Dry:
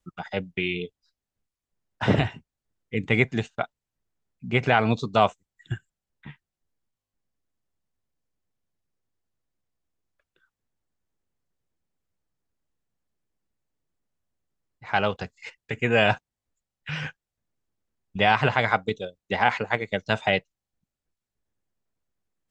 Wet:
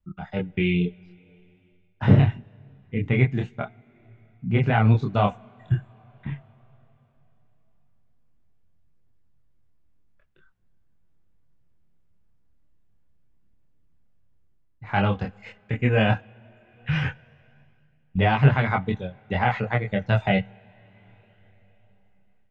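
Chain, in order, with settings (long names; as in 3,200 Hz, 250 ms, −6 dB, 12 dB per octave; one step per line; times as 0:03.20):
bass and treble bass +12 dB, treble −12 dB
coupled-rooms reverb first 0.29 s, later 3.8 s, from −18 dB, DRR 19.5 dB
automatic gain control gain up to 10 dB
multi-voice chorus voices 2, 0.11 Hz, delay 26 ms, depth 4.3 ms
level −2 dB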